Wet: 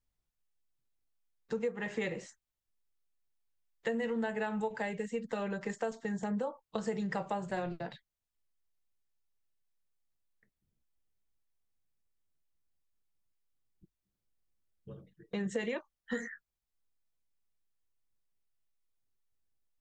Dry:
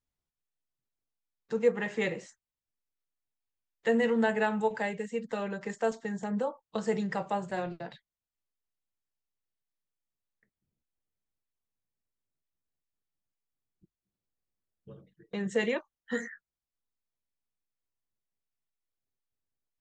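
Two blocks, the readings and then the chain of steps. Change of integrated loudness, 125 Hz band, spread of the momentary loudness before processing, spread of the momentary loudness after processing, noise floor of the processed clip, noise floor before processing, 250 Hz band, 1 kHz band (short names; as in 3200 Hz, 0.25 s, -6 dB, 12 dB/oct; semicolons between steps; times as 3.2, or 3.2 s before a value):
-5.5 dB, -2.0 dB, 10 LU, 11 LU, under -85 dBFS, under -85 dBFS, -4.0 dB, -5.0 dB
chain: low shelf 65 Hz +10.5 dB; compressor 6:1, threshold -31 dBFS, peak gain reduction 12.5 dB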